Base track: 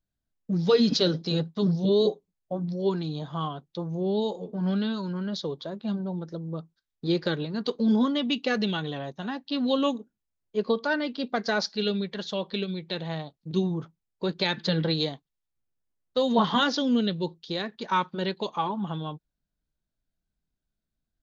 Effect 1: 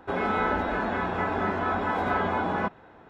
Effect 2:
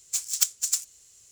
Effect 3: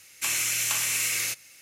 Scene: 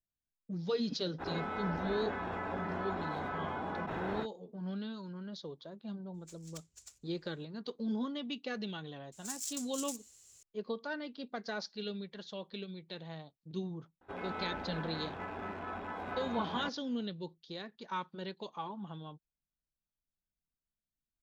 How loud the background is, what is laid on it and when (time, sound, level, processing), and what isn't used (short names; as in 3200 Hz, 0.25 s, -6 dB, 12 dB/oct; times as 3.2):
base track -13 dB
1.18 add 1 -14.5 dB, fades 0.05 s + fast leveller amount 100%
6.14 add 2 -18 dB + RIAA curve playback
9.12 add 2 -10 dB + negative-ratio compressor -30 dBFS, ratio -0.5
14.01 add 1 -14.5 dB + rattling part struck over -34 dBFS, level -31 dBFS
not used: 3